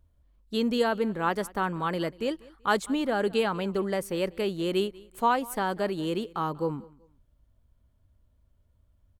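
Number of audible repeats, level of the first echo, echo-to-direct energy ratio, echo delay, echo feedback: 2, -22.5 dB, -22.0 dB, 0.191 s, 30%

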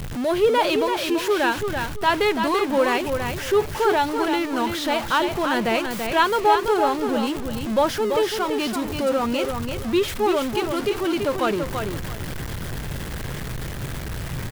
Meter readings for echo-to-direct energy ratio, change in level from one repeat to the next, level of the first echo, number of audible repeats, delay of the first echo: -6.0 dB, -13.0 dB, -6.0 dB, 3, 0.335 s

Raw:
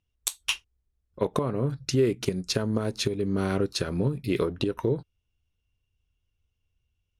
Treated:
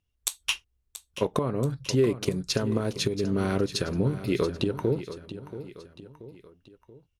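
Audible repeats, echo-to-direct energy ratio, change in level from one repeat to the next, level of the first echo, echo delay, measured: 3, -12.0 dB, -6.5 dB, -13.0 dB, 0.681 s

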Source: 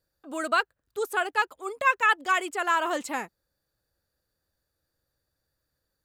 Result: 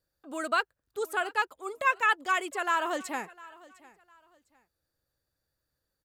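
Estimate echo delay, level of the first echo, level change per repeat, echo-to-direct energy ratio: 0.705 s, -21.5 dB, -11.0 dB, -21.0 dB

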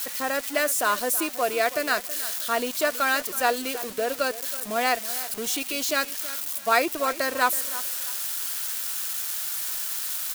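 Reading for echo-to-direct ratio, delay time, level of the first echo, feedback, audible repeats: -15.0 dB, 0.324 s, -15.5 dB, 29%, 2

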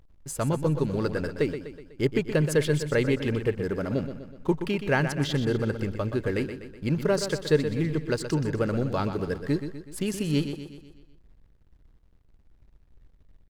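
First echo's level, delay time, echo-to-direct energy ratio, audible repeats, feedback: -9.5 dB, 0.124 s, -8.0 dB, 5, 51%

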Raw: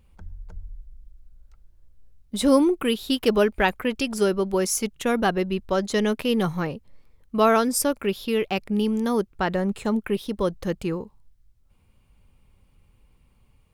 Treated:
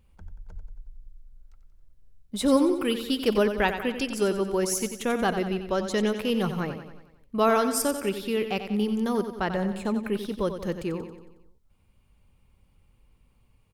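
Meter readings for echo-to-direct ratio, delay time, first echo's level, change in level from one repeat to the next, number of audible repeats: -8.0 dB, 91 ms, -9.5 dB, -5.5 dB, 5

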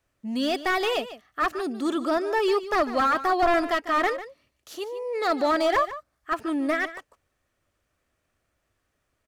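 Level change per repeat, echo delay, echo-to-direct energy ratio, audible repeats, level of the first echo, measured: no steady repeat, 0.148 s, -14.0 dB, 1, -14.0 dB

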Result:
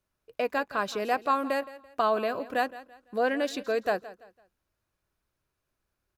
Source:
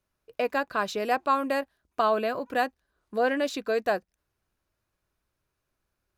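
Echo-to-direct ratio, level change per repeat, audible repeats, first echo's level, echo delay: -16.5 dB, -9.5 dB, 2, -17.0 dB, 0.168 s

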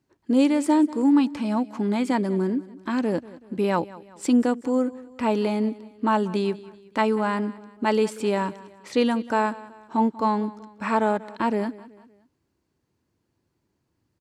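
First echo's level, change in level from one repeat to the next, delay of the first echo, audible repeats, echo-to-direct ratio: -19.0 dB, -7.0 dB, 0.189 s, 3, -18.0 dB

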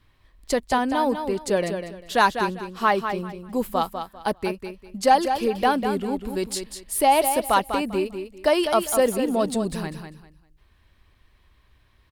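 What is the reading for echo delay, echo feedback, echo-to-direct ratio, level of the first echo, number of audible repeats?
0.198 s, 24%, -7.5 dB, -8.0 dB, 3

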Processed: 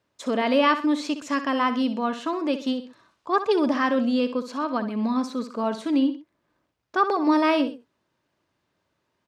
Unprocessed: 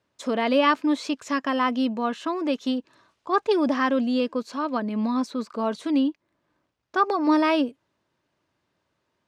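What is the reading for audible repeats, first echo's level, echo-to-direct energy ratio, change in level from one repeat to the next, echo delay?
2, -11.5 dB, -11.0 dB, -8.5 dB, 64 ms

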